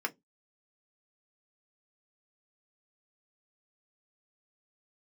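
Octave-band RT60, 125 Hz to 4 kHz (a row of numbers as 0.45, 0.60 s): 0.30, 0.25, 0.20, 0.15, 0.10, 0.15 s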